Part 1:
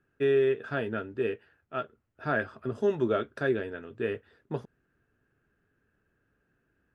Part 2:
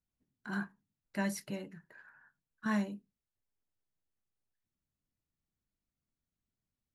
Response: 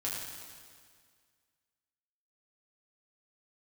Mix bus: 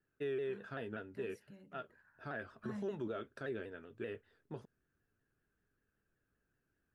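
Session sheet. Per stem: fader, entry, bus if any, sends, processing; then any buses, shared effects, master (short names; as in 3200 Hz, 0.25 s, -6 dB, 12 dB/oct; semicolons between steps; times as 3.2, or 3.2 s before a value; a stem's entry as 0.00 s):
-10.5 dB, 0.00 s, no send, high shelf 5700 Hz +4.5 dB; shaped vibrato saw down 5.2 Hz, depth 100 cents
1.52 s -19 dB -> 2.24 s -9 dB, 0.00 s, no send, low shelf 220 Hz +11.5 dB; compressor 3:1, threshold -35 dBFS, peak gain reduction 9.5 dB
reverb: off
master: limiter -32 dBFS, peak gain reduction 6.5 dB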